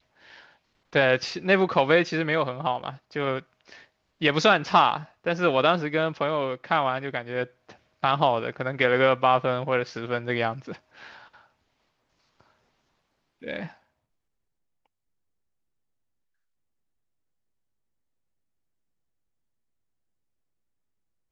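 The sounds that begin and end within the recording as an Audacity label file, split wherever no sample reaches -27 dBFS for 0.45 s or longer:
0.950000	3.390000	sound
4.220000	7.440000	sound
8.040000	10.720000	sound
13.470000	13.630000	sound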